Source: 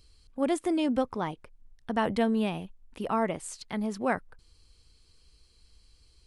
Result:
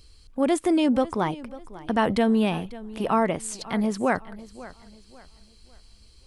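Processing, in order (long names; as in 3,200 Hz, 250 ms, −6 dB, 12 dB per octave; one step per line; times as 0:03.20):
in parallel at +1.5 dB: brickwall limiter −21 dBFS, peak gain reduction 7.5 dB
on the sum: feedback echo with a swinging delay time 545 ms, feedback 34%, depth 69 cents, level −18 dB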